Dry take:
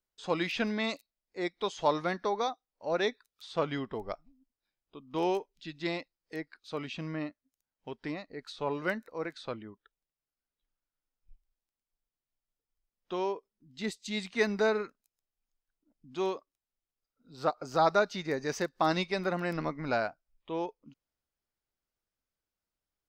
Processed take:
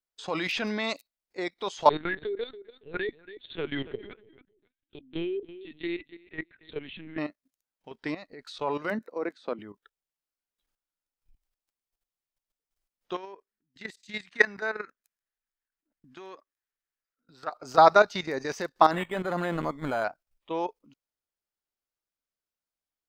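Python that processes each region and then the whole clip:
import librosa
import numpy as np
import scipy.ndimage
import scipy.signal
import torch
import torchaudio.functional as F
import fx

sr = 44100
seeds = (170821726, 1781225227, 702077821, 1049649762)

y = fx.chain(x, sr, fx.ellip_bandstop(low_hz=440.0, high_hz=1500.0, order=3, stop_db=40),
    fx.echo_feedback(ms=279, feedback_pct=19, wet_db=-16.0),
    fx.lpc_vocoder(seeds[0], excitation='pitch_kept', order=10), at=(1.89, 7.18))
y = fx.chain(y, sr, fx.ellip_highpass(hz=190.0, order=4, stop_db=40),
    fx.tilt_shelf(db=5.5, hz=640.0), at=(8.9, 9.59))
y = fx.chain(y, sr, fx.peak_eq(hz=1700.0, db=12.0, octaves=0.7),
    fx.level_steps(step_db=19), at=(13.15, 17.52))
y = fx.chain(y, sr, fx.low_shelf(hz=82.0, db=9.0),
    fx.resample_linear(factor=8), at=(18.91, 20.04))
y = fx.low_shelf(y, sr, hz=220.0, db=-7.5)
y = fx.level_steps(y, sr, step_db=13)
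y = fx.dynamic_eq(y, sr, hz=940.0, q=0.82, threshold_db=-43.0, ratio=4.0, max_db=4)
y = F.gain(torch.from_numpy(y), 8.5).numpy()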